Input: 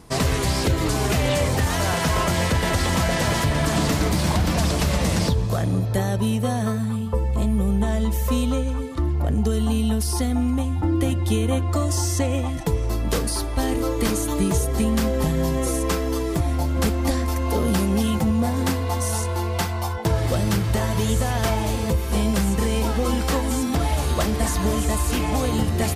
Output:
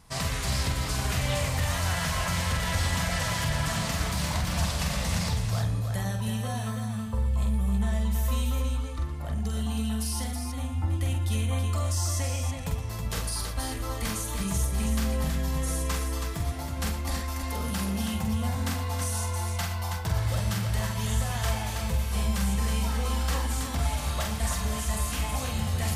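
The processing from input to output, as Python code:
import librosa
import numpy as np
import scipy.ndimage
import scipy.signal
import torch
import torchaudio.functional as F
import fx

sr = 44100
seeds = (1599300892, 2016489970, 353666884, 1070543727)

y = fx.peak_eq(x, sr, hz=350.0, db=-15.0, octaves=1.3)
y = fx.echo_multitap(y, sr, ms=(46, 118, 323), db=(-4.5, -11.5, -5.5))
y = y * librosa.db_to_amplitude(-6.5)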